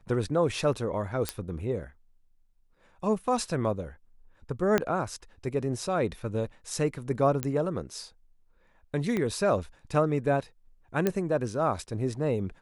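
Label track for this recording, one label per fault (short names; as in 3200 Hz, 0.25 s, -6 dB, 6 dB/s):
1.290000	1.290000	pop -12 dBFS
4.780000	4.780000	pop -10 dBFS
7.430000	7.430000	pop -13 dBFS
9.170000	9.170000	pop -17 dBFS
11.070000	11.070000	pop -12 dBFS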